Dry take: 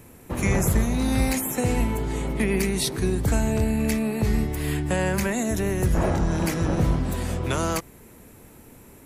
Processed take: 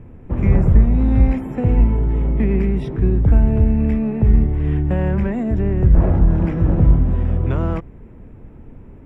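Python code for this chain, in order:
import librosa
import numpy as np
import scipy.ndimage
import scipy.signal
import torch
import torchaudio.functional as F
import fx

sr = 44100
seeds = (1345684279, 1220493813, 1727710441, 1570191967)

p1 = scipy.signal.savgol_filter(x, 25, 4, mode='constant')
p2 = fx.tilt_eq(p1, sr, slope=-3.5)
p3 = 10.0 ** (-27.0 / 20.0) * np.tanh(p2 / 10.0 ** (-27.0 / 20.0))
p4 = p2 + (p3 * 10.0 ** (-11.5 / 20.0))
y = p4 * 10.0 ** (-3.0 / 20.0)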